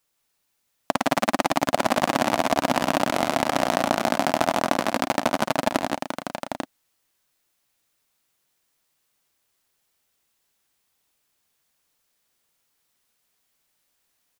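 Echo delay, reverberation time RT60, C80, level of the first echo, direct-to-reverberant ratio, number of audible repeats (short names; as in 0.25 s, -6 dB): 51 ms, none, none, -12.5 dB, none, 4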